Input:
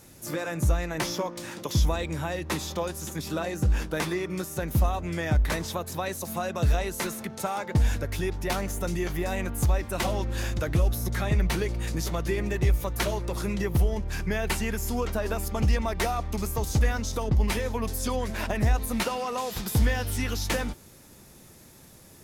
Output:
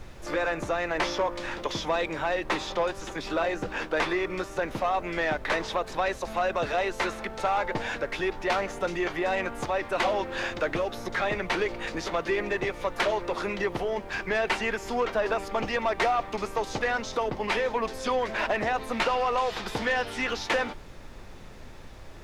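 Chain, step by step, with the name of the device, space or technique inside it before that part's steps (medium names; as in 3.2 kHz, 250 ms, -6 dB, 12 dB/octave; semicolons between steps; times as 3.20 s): aircraft cabin announcement (band-pass 440–3100 Hz; saturation -25.5 dBFS, distortion -17 dB; brown noise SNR 14 dB); trim +7.5 dB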